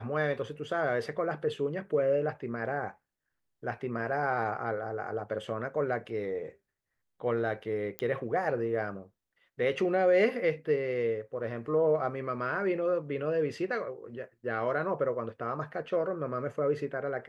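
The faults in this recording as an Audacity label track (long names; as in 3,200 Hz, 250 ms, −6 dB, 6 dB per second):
7.990000	7.990000	click −18 dBFS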